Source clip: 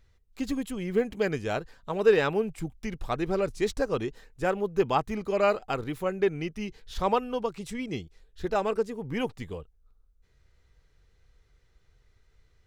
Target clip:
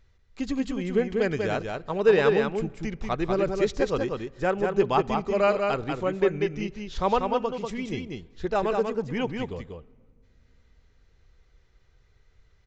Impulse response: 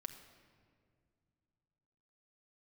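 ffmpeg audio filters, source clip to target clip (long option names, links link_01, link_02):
-filter_complex "[0:a]asplit=2[link_01][link_02];[link_02]aecho=0:1:191:0.596[link_03];[link_01][link_03]amix=inputs=2:normalize=0,aresample=16000,aresample=44100,asplit=2[link_04][link_05];[1:a]atrim=start_sample=2205,lowpass=4700[link_06];[link_05][link_06]afir=irnorm=-1:irlink=0,volume=-10dB[link_07];[link_04][link_07]amix=inputs=2:normalize=0"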